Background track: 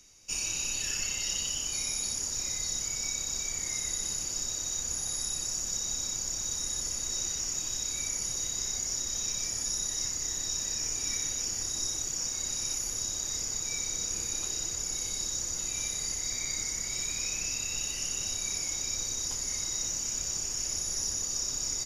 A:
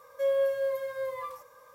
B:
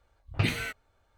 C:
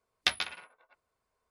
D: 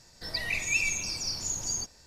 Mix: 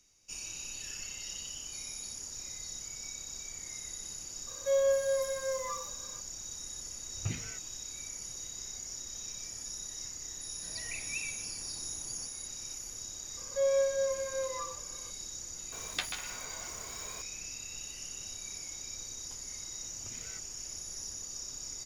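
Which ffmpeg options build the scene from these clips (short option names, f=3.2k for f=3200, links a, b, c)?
-filter_complex "[1:a]asplit=2[a][b];[2:a]asplit=2[c][d];[0:a]volume=-9.5dB[e];[c]bass=f=250:g=7,treble=f=4k:g=-6[f];[4:a]aeval=exprs='val(0)+0.0178*sin(2*PI*10000*n/s)':c=same[g];[b]highshelf=f=4.8k:g=-12[h];[3:a]aeval=exprs='val(0)+0.5*0.02*sgn(val(0))':c=same[i];[d]acompressor=threshold=-35dB:ratio=6:attack=3.2:release=140:knee=1:detection=peak[j];[a]atrim=end=1.74,asetpts=PTS-STARTPTS,volume=-1dB,afade=t=in:d=0.004:c=hsin,afade=t=out:st=1.736:d=0.004:c=hsin,adelay=4470[k];[f]atrim=end=1.17,asetpts=PTS-STARTPTS,volume=-15dB,afade=t=in:d=0.004:c=hsin,afade=t=out:st=1.166:d=0.004:c=hsin,adelay=6860[l];[g]atrim=end=2.06,asetpts=PTS-STARTPTS,volume=-12dB,afade=t=in:d=0.004:c=hsin,afade=t=out:st=2.056:d=0.004:c=hsin,adelay=10410[m];[h]atrim=end=1.74,asetpts=PTS-STARTPTS,volume=-1.5dB,afade=t=in:d=0.004:c=hsin,afade=t=out:st=1.736:d=0.004:c=hsin,adelay=13370[n];[i]atrim=end=1.5,asetpts=PTS-STARTPTS,volume=-8.5dB,afade=t=in:d=0.004:c=hsin,afade=t=out:st=1.496:d=0.004:c=hsin,adelay=693252S[o];[j]atrim=end=1.17,asetpts=PTS-STARTPTS,volume=-14dB,afade=t=in:d=0.004:c=hsin,afade=t=out:st=1.166:d=0.004:c=hsin,adelay=19670[p];[e][k][l][m][n][o][p]amix=inputs=7:normalize=0"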